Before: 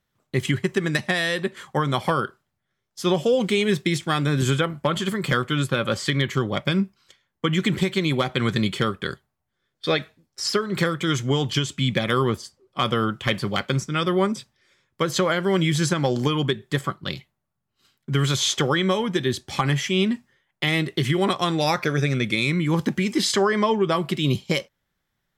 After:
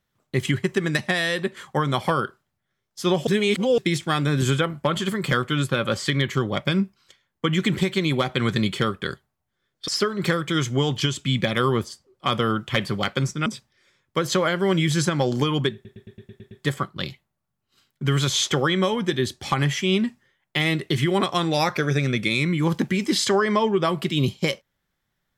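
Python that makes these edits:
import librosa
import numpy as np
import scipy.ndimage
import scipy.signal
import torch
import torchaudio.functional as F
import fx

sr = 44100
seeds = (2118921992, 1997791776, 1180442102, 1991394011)

y = fx.edit(x, sr, fx.reverse_span(start_s=3.27, length_s=0.51),
    fx.cut(start_s=9.88, length_s=0.53),
    fx.cut(start_s=13.99, length_s=0.31),
    fx.stutter(start_s=16.58, slice_s=0.11, count=8), tone=tone)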